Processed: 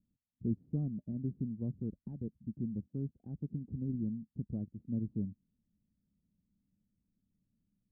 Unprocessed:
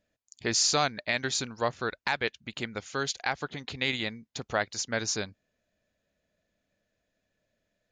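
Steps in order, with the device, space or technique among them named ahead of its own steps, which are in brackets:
the neighbour's flat through the wall (low-pass filter 260 Hz 24 dB per octave; parametric band 190 Hz +5.5 dB 0.77 octaves)
level +1.5 dB

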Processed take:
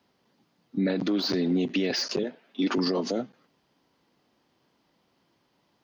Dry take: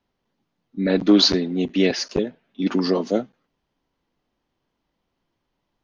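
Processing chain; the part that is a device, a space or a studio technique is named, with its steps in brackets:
0:02.23–0:02.78: high-pass filter 280 Hz 12 dB per octave
broadcast voice chain (high-pass filter 120 Hz 12 dB per octave; de-essing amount 70%; downward compressor 5 to 1, threshold −26 dBFS, peak gain reduction 14.5 dB; parametric band 4,800 Hz +5 dB 0.31 octaves; brickwall limiter −25.5 dBFS, peak gain reduction 10 dB)
level +7.5 dB

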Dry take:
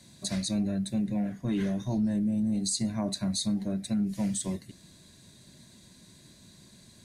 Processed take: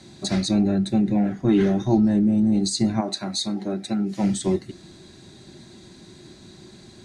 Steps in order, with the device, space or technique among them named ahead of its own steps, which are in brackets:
inside a cardboard box (low-pass filter 6,000 Hz 12 dB per octave; hollow resonant body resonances 360/790/1,300 Hz, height 13 dB, ringing for 50 ms)
0:03.00–0:04.22: high-pass filter 730 Hz → 250 Hz 6 dB per octave
level +7.5 dB

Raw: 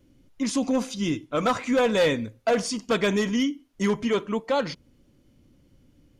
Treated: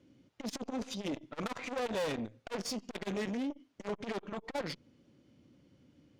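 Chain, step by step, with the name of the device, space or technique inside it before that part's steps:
valve radio (band-pass filter 120–5,800 Hz; tube saturation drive 30 dB, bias 0.5; saturating transformer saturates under 380 Hz)

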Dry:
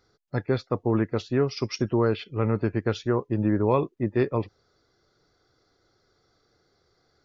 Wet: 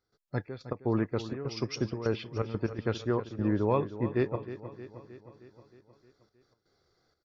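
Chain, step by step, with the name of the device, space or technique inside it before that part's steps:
trance gate with a delay (gate pattern ".xxx.x.xxxx.xxxx" 124 BPM −12 dB; repeating echo 312 ms, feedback 60%, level −13 dB)
level −4.5 dB

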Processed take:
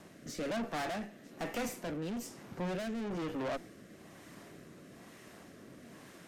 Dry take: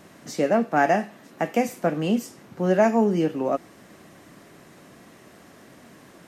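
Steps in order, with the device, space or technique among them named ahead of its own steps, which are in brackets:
overdriven rotary cabinet (tube saturation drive 33 dB, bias 0.5; rotating-speaker cabinet horn 1.1 Hz)

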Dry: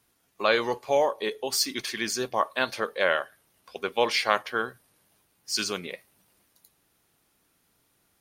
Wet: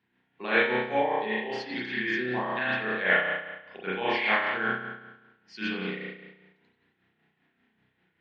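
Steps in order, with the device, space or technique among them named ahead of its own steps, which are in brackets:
combo amplifier with spring reverb and tremolo (spring reverb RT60 1.1 s, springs 32 ms, chirp 60 ms, DRR −9 dB; amplitude tremolo 5.1 Hz, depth 50%; loudspeaker in its box 99–3,500 Hz, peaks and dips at 200 Hz +7 dB, 570 Hz −9 dB, 1,200 Hz −9 dB, 1,800 Hz +8 dB)
level −6 dB

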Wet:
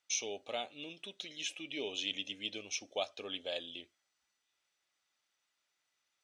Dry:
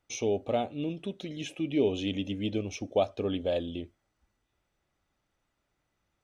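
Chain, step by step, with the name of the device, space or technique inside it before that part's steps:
piezo pickup straight into a mixer (low-pass filter 5,600 Hz 12 dB per octave; first difference)
level +10 dB

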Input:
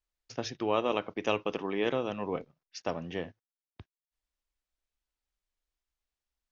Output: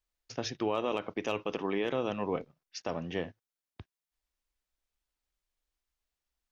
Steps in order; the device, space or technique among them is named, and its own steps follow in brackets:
clipper into limiter (hard clipping −16 dBFS, distortion −32 dB; brickwall limiter −22 dBFS, peak gain reduction 6 dB)
level +1.5 dB

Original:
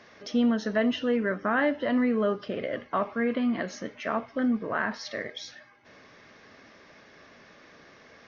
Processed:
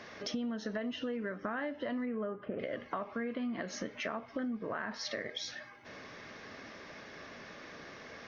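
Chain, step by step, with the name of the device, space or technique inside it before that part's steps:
0:02.05–0:02.58: low-pass filter 2,800 Hz → 1,800 Hz 24 dB per octave
serial compression, peaks first (downward compressor 6 to 1, threshold −35 dBFS, peak gain reduction 14 dB; downward compressor 1.5 to 1, threshold −44 dBFS, peak gain reduction 4.5 dB)
level +4 dB

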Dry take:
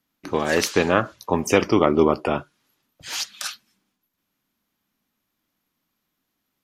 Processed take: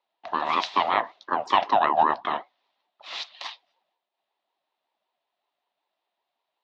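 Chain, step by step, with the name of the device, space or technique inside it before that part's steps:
voice changer toy (ring modulator whose carrier an LFO sweeps 540 Hz, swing 35%, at 5.3 Hz; loudspeaker in its box 480–3,900 Hz, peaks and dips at 480 Hz −6 dB, 700 Hz +6 dB, 1,000 Hz +4 dB, 1,500 Hz −6 dB, 2,200 Hz −3 dB, 3,800 Hz +4 dB)

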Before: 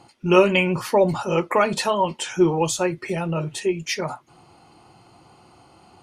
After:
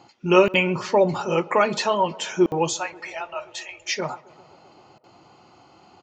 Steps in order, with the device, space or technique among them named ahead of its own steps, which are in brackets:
call with lost packets (high-pass filter 160 Hz 6 dB per octave; downsampling to 16,000 Hz; dropped packets of 60 ms random)
0:02.73–0:03.87: Chebyshev band-stop filter 100–630 Hz, order 4
tape delay 132 ms, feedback 89%, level −22.5 dB, low-pass 1,800 Hz

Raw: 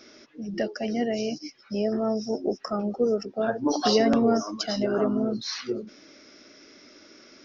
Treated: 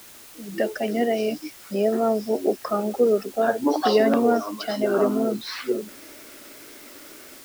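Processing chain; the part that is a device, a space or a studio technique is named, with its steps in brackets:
dictaphone (band-pass filter 260–3,000 Hz; automatic gain control gain up to 11.5 dB; tape wow and flutter; white noise bed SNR 22 dB)
level −5 dB

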